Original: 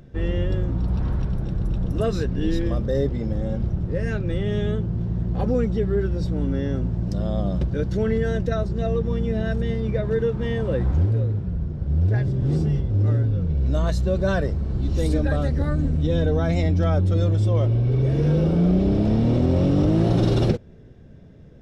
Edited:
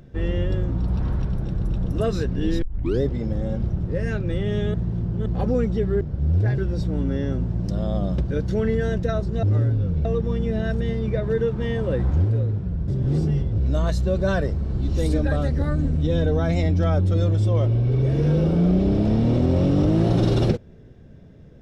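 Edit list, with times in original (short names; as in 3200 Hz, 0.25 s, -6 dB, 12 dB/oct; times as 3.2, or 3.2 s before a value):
2.62 tape start 0.39 s
4.74–5.26 reverse
11.69–12.26 move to 6.01
12.96–13.58 move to 8.86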